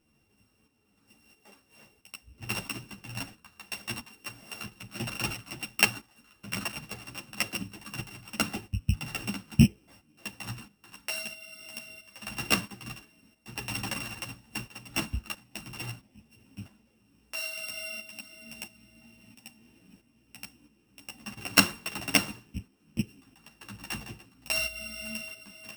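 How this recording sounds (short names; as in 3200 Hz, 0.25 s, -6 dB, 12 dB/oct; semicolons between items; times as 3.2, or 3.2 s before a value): a buzz of ramps at a fixed pitch in blocks of 16 samples; tremolo saw up 1.5 Hz, depth 65%; a shimmering, thickened sound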